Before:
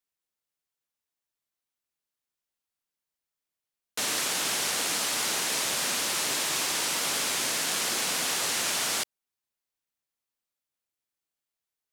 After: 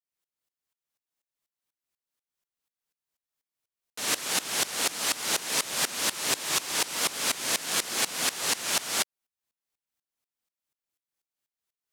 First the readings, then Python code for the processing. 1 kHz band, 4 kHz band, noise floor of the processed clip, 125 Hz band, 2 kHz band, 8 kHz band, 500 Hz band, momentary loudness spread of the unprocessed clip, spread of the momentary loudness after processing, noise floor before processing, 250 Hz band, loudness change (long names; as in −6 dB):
−0.5 dB, −0.5 dB, below −85 dBFS, −1.0 dB, −0.5 dB, −0.5 dB, −0.5 dB, 2 LU, 3 LU, below −85 dBFS, −0.5 dB, −0.5 dB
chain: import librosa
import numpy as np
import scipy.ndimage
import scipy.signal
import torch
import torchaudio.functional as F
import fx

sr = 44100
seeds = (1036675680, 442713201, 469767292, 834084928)

y = fx.tremolo_decay(x, sr, direction='swelling', hz=4.1, depth_db=20)
y = F.gain(torch.from_numpy(y), 6.0).numpy()